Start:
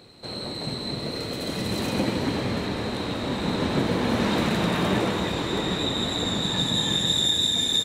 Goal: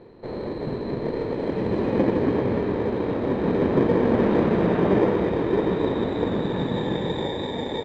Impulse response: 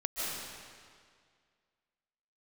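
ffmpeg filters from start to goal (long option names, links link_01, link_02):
-filter_complex "[0:a]equalizer=frequency=430:width=1.3:gain=10,asplit=2[link_01][link_02];[link_02]acrusher=samples=32:mix=1:aa=0.000001,volume=-5dB[link_03];[link_01][link_03]amix=inputs=2:normalize=0,lowpass=1800,volume=-3.5dB"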